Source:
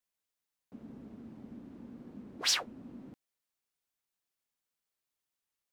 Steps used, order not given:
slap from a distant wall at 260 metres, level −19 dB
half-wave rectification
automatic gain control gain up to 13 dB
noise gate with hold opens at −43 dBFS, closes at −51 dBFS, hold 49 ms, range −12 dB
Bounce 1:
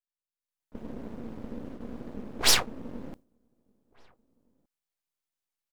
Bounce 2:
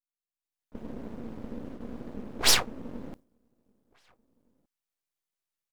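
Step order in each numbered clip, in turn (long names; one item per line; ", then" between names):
half-wave rectification, then slap from a distant wall, then noise gate with hold, then automatic gain control
slap from a distant wall, then half-wave rectification, then noise gate with hold, then automatic gain control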